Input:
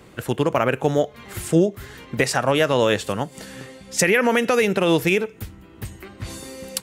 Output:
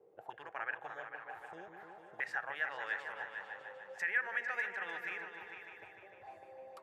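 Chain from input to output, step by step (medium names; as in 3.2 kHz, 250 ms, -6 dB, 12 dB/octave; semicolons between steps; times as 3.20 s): graphic EQ with 31 bands 250 Hz -12 dB, 800 Hz +11 dB, 12.5 kHz +9 dB; auto-wah 420–1700 Hz, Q 7.7, up, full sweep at -20.5 dBFS; delay with an opening low-pass 150 ms, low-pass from 400 Hz, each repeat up 2 oct, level -3 dB; trim -6.5 dB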